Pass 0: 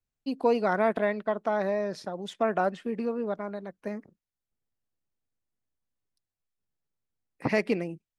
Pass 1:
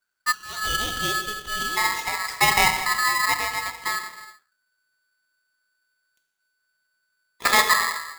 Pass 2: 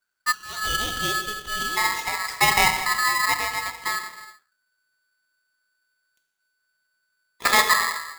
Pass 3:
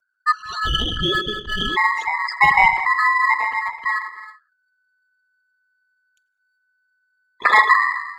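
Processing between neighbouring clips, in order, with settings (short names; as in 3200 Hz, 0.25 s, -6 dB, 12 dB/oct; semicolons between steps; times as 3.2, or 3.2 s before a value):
non-linear reverb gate 0.41 s falling, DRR 4 dB; spectral delete 0.32–1.77, 230–1400 Hz; polarity switched at an audio rate 1500 Hz; gain +6.5 dB
nothing audible
formant sharpening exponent 3; gain +5 dB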